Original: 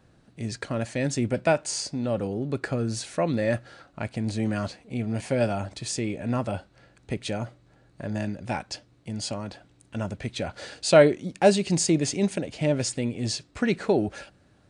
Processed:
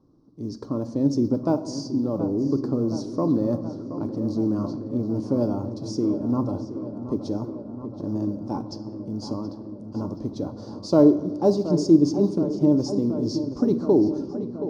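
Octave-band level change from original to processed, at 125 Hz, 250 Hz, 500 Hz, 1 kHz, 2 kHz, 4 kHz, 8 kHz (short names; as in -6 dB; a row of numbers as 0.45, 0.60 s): +0.5 dB, +7.0 dB, 0.0 dB, -3.5 dB, under -20 dB, -7.5 dB, under -10 dB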